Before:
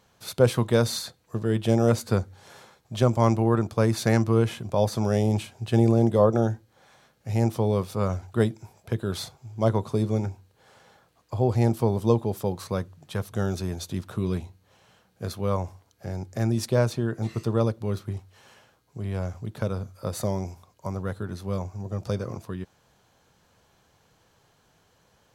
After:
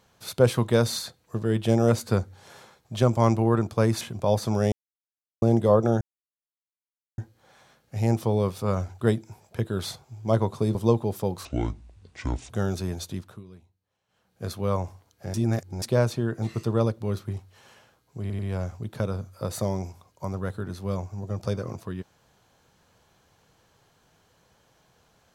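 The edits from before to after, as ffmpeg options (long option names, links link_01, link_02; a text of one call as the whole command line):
ffmpeg -i in.wav -filter_complex "[0:a]asplit=14[link_01][link_02][link_03][link_04][link_05][link_06][link_07][link_08][link_09][link_10][link_11][link_12][link_13][link_14];[link_01]atrim=end=4.012[link_15];[link_02]atrim=start=4.508:end=5.22,asetpts=PTS-STARTPTS,afade=type=out:start_time=0.708:duration=0.004:curve=hsin[link_16];[link_03]atrim=start=5.22:end=5.92,asetpts=PTS-STARTPTS,volume=0[link_17];[link_04]atrim=start=5.92:end=6.51,asetpts=PTS-STARTPTS,afade=type=in:duration=0.004:curve=hsin,afade=type=out:start_time=0.586:duration=0.004:curve=hsin,apad=pad_dur=1.17[link_18];[link_05]atrim=start=6.51:end=10.082,asetpts=PTS-STARTPTS,afade=type=in:duration=0.004:curve=hsin[link_19];[link_06]atrim=start=11.958:end=12.664[link_20];[link_07]atrim=start=12.66:end=13.3,asetpts=PTS-STARTPTS,asetrate=26901,aresample=44100[link_21];[link_08]atrim=start=13.296:end=14.24,asetpts=PTS-STARTPTS,afade=type=out:start_time=0.534:duration=0.41:silence=0.0944061[link_22];[link_09]atrim=start=14.24:end=14.88,asetpts=PTS-STARTPTS,volume=-20.5dB[link_23];[link_10]atrim=start=14.88:end=16.142,asetpts=PTS-STARTPTS,afade=type=in:duration=0.41:silence=0.0944061[link_24];[link_11]atrim=start=16.138:end=16.622,asetpts=PTS-STARTPTS,areverse[link_25];[link_12]atrim=start=16.618:end=19.102[link_26];[link_13]atrim=start=19.008:end=19.102[link_27];[link_14]atrim=start=19.008[link_28];[link_16][link_17][link_18][link_19]concat=n=4:v=0:a=1[link_29];[link_15][link_29]acrossfade=duration=0.004:curve1=hsin:curve2=hsin[link_30];[link_30][link_20]acrossfade=duration=0.004:curve1=hsin:curve2=hsin[link_31];[link_31][link_21]acrossfade=duration=0.004:curve1=hsin:curve2=hsin[link_32];[link_22][link_23][link_24]concat=n=3:v=0:a=1[link_33];[link_32][link_33]acrossfade=duration=0.004:curve1=hsin:curve2=hsin[link_34];[link_34][link_25]acrossfade=duration=0.004:curve1=hsin:curve2=hsin[link_35];[link_35][link_26]acrossfade=duration=0.004:curve1=hsin:curve2=hsin[link_36];[link_36][link_27]acrossfade=duration=0.004:curve1=hsin:curve2=hsin[link_37];[link_37][link_28]acrossfade=duration=0.004:curve1=hsin:curve2=hsin" out.wav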